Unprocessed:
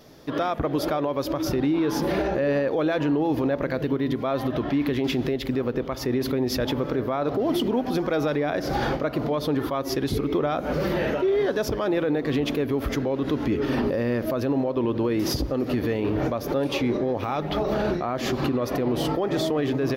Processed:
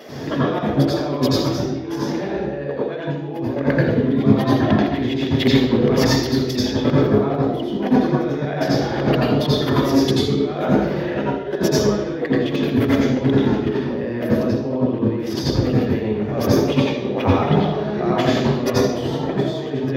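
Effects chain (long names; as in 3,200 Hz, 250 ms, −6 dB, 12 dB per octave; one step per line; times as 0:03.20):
dynamic equaliser 3,600 Hz, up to +5 dB, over −49 dBFS, Q 4
compressor whose output falls as the input rises −31 dBFS, ratio −0.5
convolution reverb RT60 0.85 s, pre-delay 83 ms, DRR −4.5 dB
level −2.5 dB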